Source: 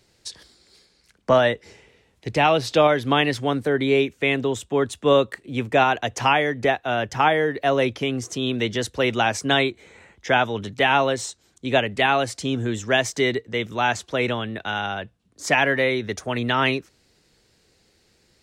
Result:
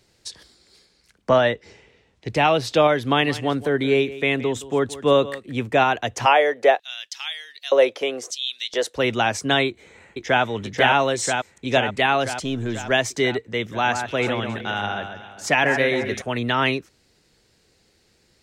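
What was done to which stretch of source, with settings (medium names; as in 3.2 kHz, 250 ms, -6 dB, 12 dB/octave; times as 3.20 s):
1.30–2.30 s: low-pass 6.7 kHz
3.02–5.62 s: delay 170 ms -16.5 dB
6.25–8.95 s: LFO high-pass square 0.29 Hz -> 1.5 Hz 520–4000 Hz
9.67–10.43 s: echo throw 490 ms, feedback 70%, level -2 dB
10.99–11.78 s: dynamic bell 7.7 kHz, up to +6 dB, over -45 dBFS, Q 0.88
12.44–12.91 s: partial rectifier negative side -3 dB
13.62–16.22 s: echo whose repeats swap between lows and highs 135 ms, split 2.2 kHz, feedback 58%, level -6.5 dB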